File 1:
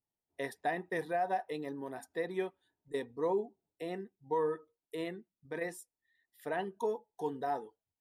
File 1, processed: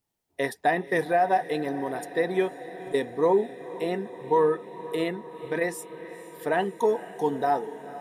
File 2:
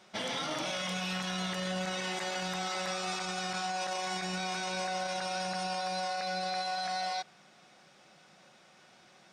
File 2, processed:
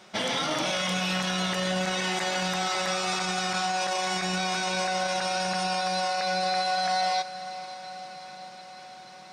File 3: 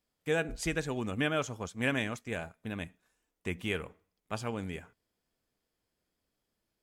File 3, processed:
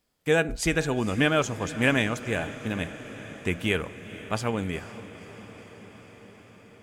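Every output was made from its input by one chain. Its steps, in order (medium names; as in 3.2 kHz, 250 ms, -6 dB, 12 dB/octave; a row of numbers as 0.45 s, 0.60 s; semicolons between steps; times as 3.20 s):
echo that smears into a reverb 484 ms, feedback 72%, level -15.5 dB; normalise loudness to -27 LUFS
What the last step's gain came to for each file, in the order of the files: +10.5 dB, +7.0 dB, +8.0 dB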